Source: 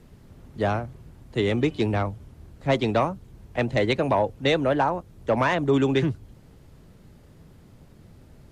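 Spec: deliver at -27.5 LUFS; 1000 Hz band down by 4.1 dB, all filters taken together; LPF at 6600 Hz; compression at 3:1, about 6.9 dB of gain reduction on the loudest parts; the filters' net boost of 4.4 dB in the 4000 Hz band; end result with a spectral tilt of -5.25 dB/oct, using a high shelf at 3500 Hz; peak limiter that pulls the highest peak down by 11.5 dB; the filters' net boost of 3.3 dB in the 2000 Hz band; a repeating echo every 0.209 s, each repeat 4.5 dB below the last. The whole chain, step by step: LPF 6600 Hz; bell 1000 Hz -6.5 dB; bell 2000 Hz +5.5 dB; high shelf 3500 Hz -6.5 dB; bell 4000 Hz +8 dB; compressor 3:1, threshold -26 dBFS; limiter -25.5 dBFS; feedback echo 0.209 s, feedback 60%, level -4.5 dB; gain +6.5 dB

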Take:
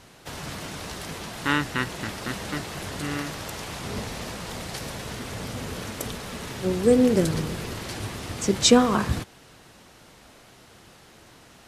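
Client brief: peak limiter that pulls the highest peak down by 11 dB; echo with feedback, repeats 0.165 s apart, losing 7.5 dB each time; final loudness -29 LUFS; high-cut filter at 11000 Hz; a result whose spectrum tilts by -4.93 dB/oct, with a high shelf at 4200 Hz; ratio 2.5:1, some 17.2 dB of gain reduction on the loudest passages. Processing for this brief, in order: LPF 11000 Hz; high shelf 4200 Hz -9 dB; compressor 2.5:1, threshold -38 dBFS; limiter -31.5 dBFS; feedback echo 0.165 s, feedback 42%, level -7.5 dB; gain +11.5 dB

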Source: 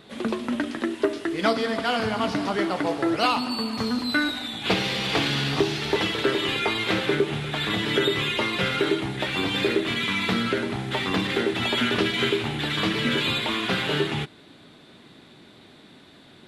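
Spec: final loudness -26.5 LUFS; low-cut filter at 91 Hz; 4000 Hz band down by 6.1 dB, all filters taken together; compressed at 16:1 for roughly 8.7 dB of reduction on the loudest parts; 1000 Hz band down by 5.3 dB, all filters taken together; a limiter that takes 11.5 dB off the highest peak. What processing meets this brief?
HPF 91 Hz; bell 1000 Hz -7 dB; bell 4000 Hz -7.5 dB; compressor 16:1, threshold -28 dBFS; gain +10.5 dB; limiter -18.5 dBFS

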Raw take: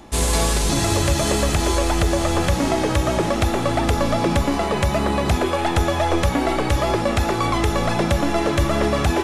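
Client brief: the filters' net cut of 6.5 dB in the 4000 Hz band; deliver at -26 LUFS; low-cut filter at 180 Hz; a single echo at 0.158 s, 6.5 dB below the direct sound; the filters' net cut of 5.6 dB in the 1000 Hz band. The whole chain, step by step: HPF 180 Hz; bell 1000 Hz -7 dB; bell 4000 Hz -8 dB; echo 0.158 s -6.5 dB; gain -3.5 dB

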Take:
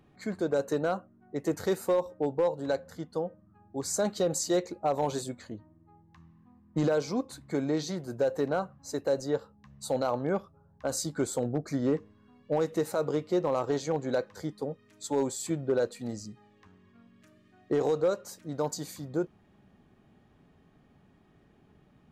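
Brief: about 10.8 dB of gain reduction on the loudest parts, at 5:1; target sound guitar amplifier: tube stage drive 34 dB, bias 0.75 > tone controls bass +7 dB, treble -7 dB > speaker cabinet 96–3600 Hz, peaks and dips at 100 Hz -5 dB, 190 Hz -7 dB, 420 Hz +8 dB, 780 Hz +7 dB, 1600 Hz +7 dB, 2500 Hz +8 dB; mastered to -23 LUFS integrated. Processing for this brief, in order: compressor 5:1, threshold -35 dBFS; tube stage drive 34 dB, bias 0.75; tone controls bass +7 dB, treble -7 dB; speaker cabinet 96–3600 Hz, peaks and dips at 100 Hz -5 dB, 190 Hz -7 dB, 420 Hz +8 dB, 780 Hz +7 dB, 1600 Hz +7 dB, 2500 Hz +8 dB; gain +18 dB

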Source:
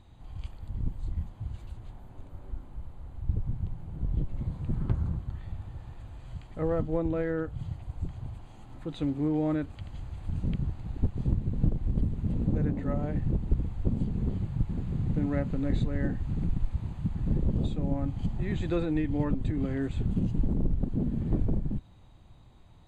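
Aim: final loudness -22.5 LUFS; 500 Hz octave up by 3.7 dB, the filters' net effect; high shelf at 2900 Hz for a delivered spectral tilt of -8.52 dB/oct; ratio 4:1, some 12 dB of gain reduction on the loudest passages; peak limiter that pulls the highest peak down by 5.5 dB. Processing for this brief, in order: bell 500 Hz +4 dB; high shelf 2900 Hz +8.5 dB; compressor 4:1, threshold -35 dBFS; gain +19 dB; limiter -10.5 dBFS

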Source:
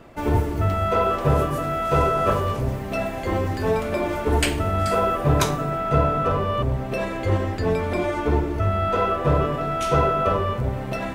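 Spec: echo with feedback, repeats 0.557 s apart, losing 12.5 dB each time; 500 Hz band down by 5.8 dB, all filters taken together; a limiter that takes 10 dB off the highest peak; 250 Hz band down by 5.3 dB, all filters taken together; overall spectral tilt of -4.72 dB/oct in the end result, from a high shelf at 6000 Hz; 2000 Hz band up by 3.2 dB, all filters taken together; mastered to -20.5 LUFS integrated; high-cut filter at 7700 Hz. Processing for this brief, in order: LPF 7700 Hz; bell 250 Hz -6 dB; bell 500 Hz -6.5 dB; bell 2000 Hz +4 dB; high shelf 6000 Hz +4 dB; limiter -16 dBFS; feedback echo 0.557 s, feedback 24%, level -12.5 dB; gain +5 dB

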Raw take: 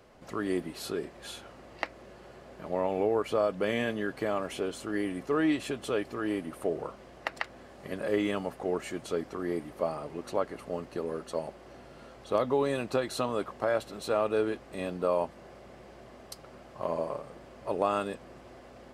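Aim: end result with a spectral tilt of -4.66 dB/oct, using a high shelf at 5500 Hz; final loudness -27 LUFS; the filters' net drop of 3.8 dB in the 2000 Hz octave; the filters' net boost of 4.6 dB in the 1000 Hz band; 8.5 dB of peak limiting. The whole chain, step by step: bell 1000 Hz +8 dB; bell 2000 Hz -8.5 dB; high shelf 5500 Hz +5.5 dB; gain +6 dB; limiter -13 dBFS

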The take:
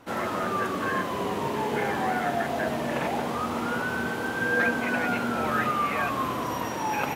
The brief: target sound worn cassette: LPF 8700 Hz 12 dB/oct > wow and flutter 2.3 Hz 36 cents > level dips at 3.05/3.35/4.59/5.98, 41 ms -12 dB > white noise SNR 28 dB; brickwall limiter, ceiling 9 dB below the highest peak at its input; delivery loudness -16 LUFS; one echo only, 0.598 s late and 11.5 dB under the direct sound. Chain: limiter -22 dBFS; LPF 8700 Hz 12 dB/oct; echo 0.598 s -11.5 dB; wow and flutter 2.3 Hz 36 cents; level dips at 3.05/3.35/4.59/5.98, 41 ms -12 dB; white noise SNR 28 dB; gain +14.5 dB

